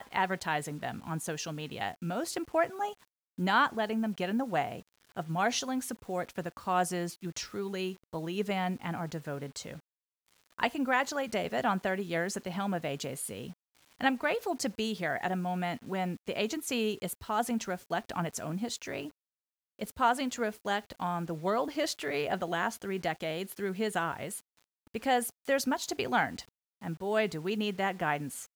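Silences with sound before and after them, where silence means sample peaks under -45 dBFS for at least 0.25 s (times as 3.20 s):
2.94–3.38 s
4.81–5.17 s
9.79–10.59 s
13.53–14.01 s
19.10–19.79 s
24.40–24.94 s
26.43–26.82 s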